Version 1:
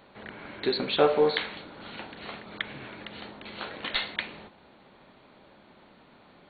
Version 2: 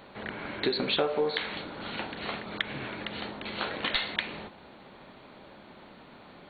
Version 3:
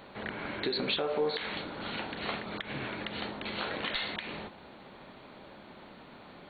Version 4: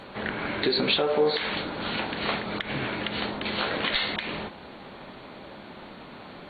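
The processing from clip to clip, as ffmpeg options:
-af "acompressor=threshold=0.0316:ratio=5,volume=1.78"
-af "alimiter=limit=0.0944:level=0:latency=1:release=104"
-af "volume=2.37" -ar 48000 -c:a libvorbis -b:a 32k

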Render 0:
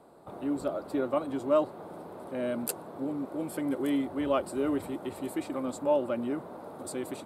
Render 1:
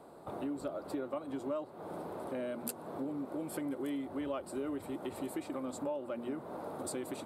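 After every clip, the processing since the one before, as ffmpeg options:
-af "bandreject=f=60:t=h:w=6,bandreject=f=120:t=h:w=6,bandreject=f=180:t=h:w=6,bandreject=f=240:t=h:w=6,acompressor=threshold=0.0126:ratio=5,volume=1.26"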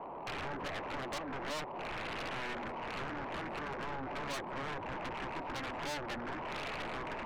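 -af "lowpass=f=990:t=q:w=4.9,aeval=exprs='0.075*(cos(1*acos(clip(val(0)/0.075,-1,1)))-cos(1*PI/2))+0.00531*(cos(6*acos(clip(val(0)/0.075,-1,1)))-cos(6*PI/2))+0.0237*(cos(7*acos(clip(val(0)/0.075,-1,1)))-cos(7*PI/2))':c=same,asoftclip=type=tanh:threshold=0.0112,volume=1.58"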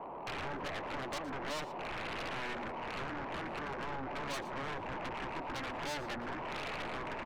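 -af "aecho=1:1:116:0.15"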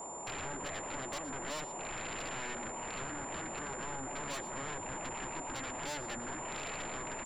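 -af "aeval=exprs='val(0)+0.00631*sin(2*PI*7200*n/s)':c=same,volume=0.841"

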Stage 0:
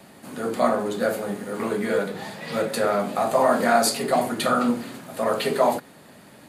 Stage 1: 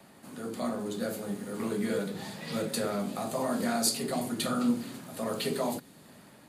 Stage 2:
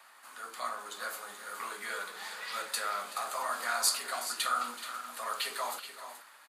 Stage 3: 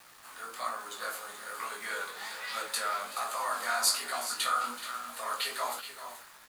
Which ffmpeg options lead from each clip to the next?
-filter_complex "[0:a]dynaudnorm=f=470:g=3:m=1.88,equalizer=f=1100:w=1.2:g=3,acrossover=split=360|3000[s0][s1][s2];[s1]acompressor=threshold=0.002:ratio=1.5[s3];[s0][s3][s2]amix=inputs=3:normalize=0,volume=0.447"
-filter_complex "[0:a]highpass=f=1200:t=q:w=2.1,asplit=2[s0][s1];[s1]aecho=0:1:378|428:0.158|0.266[s2];[s0][s2]amix=inputs=2:normalize=0"
-af "acrusher=bits=8:mix=0:aa=0.000001,flanger=delay=16:depth=6.6:speed=1.2,volume=1.68"

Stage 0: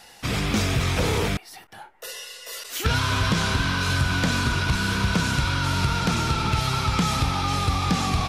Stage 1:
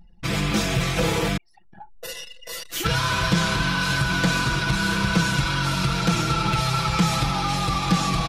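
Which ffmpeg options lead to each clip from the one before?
-filter_complex "[0:a]aecho=1:1:6:0.97,acrossover=split=240[s0][s1];[s0]acompressor=mode=upward:threshold=0.0355:ratio=2.5[s2];[s2][s1]amix=inputs=2:normalize=0,anlmdn=15.8,volume=0.841"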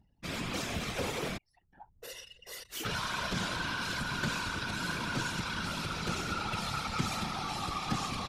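-af "lowshelf=f=130:g=-9,afftfilt=real='hypot(re,im)*cos(2*PI*random(0))':imag='hypot(re,im)*sin(2*PI*random(1))':win_size=512:overlap=0.75,volume=0.562"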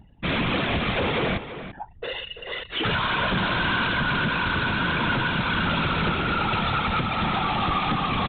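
-filter_complex "[0:a]alimiter=level_in=1.33:limit=0.0631:level=0:latency=1:release=420,volume=0.75,aresample=8000,aeval=exprs='0.0501*sin(PI/2*2*val(0)/0.0501)':c=same,aresample=44100,asplit=2[s0][s1];[s1]adelay=338.2,volume=0.282,highshelf=f=4000:g=-7.61[s2];[s0][s2]amix=inputs=2:normalize=0,volume=2.11"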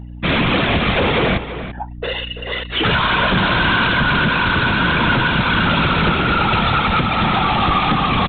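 -af "aeval=exprs='val(0)+0.0112*(sin(2*PI*60*n/s)+sin(2*PI*2*60*n/s)/2+sin(2*PI*3*60*n/s)/3+sin(2*PI*4*60*n/s)/4+sin(2*PI*5*60*n/s)/5)':c=same,volume=2.51"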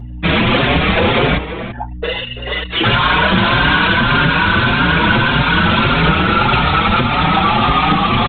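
-filter_complex "[0:a]asplit=2[s0][s1];[s1]adelay=5.3,afreqshift=1.7[s2];[s0][s2]amix=inputs=2:normalize=1,volume=2"

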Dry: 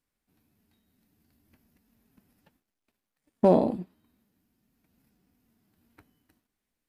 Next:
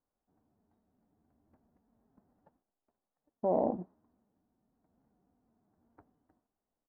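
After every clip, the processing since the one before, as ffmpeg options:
-af "firequalizer=gain_entry='entry(150,0);entry(710,10);entry(2600,-21)':delay=0.05:min_phase=1,areverse,acompressor=threshold=0.1:ratio=6,areverse,volume=0.501"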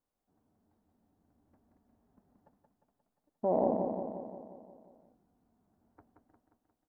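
-af "aecho=1:1:177|354|531|708|885|1062|1239|1416:0.562|0.332|0.196|0.115|0.0681|0.0402|0.0237|0.014"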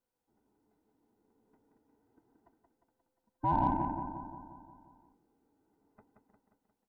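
-af "afftfilt=real='real(if(between(b,1,1008),(2*floor((b-1)/24)+1)*24-b,b),0)':imag='imag(if(between(b,1,1008),(2*floor((b-1)/24)+1)*24-b,b),0)*if(between(b,1,1008),-1,1)':win_size=2048:overlap=0.75,aeval=exprs='0.141*(cos(1*acos(clip(val(0)/0.141,-1,1)))-cos(1*PI/2))+0.002*(cos(7*acos(clip(val(0)/0.141,-1,1)))-cos(7*PI/2))':c=same"

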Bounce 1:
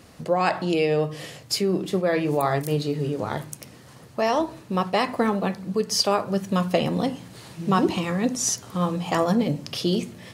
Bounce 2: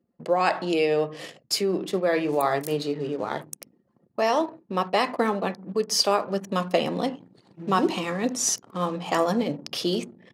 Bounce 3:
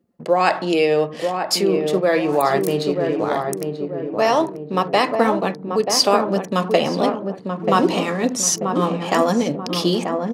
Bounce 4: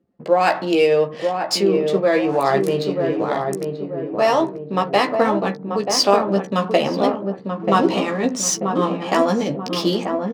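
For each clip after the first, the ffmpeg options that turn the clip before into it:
-af "anlmdn=1,highpass=250"
-filter_complex "[0:a]asplit=2[s0][s1];[s1]adelay=936,lowpass=f=930:p=1,volume=0.631,asplit=2[s2][s3];[s3]adelay=936,lowpass=f=930:p=1,volume=0.5,asplit=2[s4][s5];[s5]adelay=936,lowpass=f=930:p=1,volume=0.5,asplit=2[s6][s7];[s7]adelay=936,lowpass=f=930:p=1,volume=0.5,asplit=2[s8][s9];[s9]adelay=936,lowpass=f=930:p=1,volume=0.5,asplit=2[s10][s11];[s11]adelay=936,lowpass=f=930:p=1,volume=0.5[s12];[s0][s2][s4][s6][s8][s10][s12]amix=inputs=7:normalize=0,volume=1.88"
-filter_complex "[0:a]adynamicsmooth=sensitivity=2.5:basefreq=5000,asplit=2[s0][s1];[s1]adelay=15,volume=0.501[s2];[s0][s2]amix=inputs=2:normalize=0,volume=0.891"

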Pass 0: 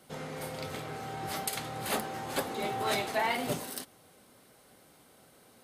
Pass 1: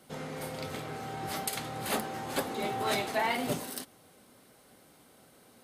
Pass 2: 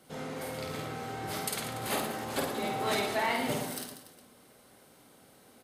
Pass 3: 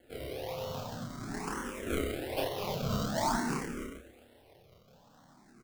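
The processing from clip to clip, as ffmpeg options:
-af "equalizer=f=250:t=o:w=0.77:g=2.5"
-af "aecho=1:1:50|112.5|190.6|288.3|410.4:0.631|0.398|0.251|0.158|0.1,volume=0.841"
-filter_complex "[0:a]acrusher=samples=35:mix=1:aa=0.000001:lfo=1:lforange=35:lforate=1.1,asplit=2[s0][s1];[s1]adelay=29,volume=0.708[s2];[s0][s2]amix=inputs=2:normalize=0,asplit=2[s3][s4];[s4]afreqshift=0.48[s5];[s3][s5]amix=inputs=2:normalize=1"

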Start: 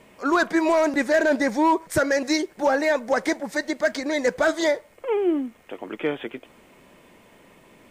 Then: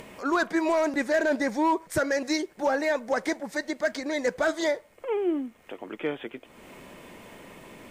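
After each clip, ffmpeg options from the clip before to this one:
-af "acompressor=mode=upward:threshold=0.0282:ratio=2.5,volume=0.596"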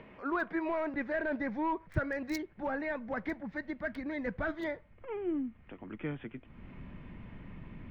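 -filter_complex "[0:a]equalizer=f=680:t=o:w=1.6:g=-3.5,acrossover=split=150|2800[s0][s1][s2];[s2]acrusher=bits=3:mix=0:aa=0.5[s3];[s0][s1][s3]amix=inputs=3:normalize=0,asubboost=boost=9:cutoff=150,volume=0.531"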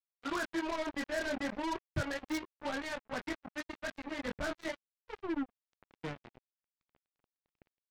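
-af "flanger=delay=18:depth=7.1:speed=0.37,acrusher=bits=5:mix=0:aa=0.5"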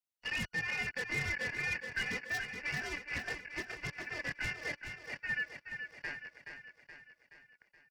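-filter_complex "[0:a]afftfilt=real='real(if(lt(b,272),68*(eq(floor(b/68),0)*1+eq(floor(b/68),1)*0+eq(floor(b/68),2)*3+eq(floor(b/68),3)*2)+mod(b,68),b),0)':imag='imag(if(lt(b,272),68*(eq(floor(b/68),0)*1+eq(floor(b/68),1)*0+eq(floor(b/68),2)*3+eq(floor(b/68),3)*2)+mod(b,68),b),0)':win_size=2048:overlap=0.75,aecho=1:1:424|848|1272|1696|2120|2544|2968:0.422|0.228|0.123|0.0664|0.0359|0.0194|0.0105,acrossover=split=380|1400|4500[s0][s1][s2][s3];[s1]aeval=exprs='0.0112*(abs(mod(val(0)/0.0112+3,4)-2)-1)':c=same[s4];[s0][s4][s2][s3]amix=inputs=4:normalize=0,volume=0.891"

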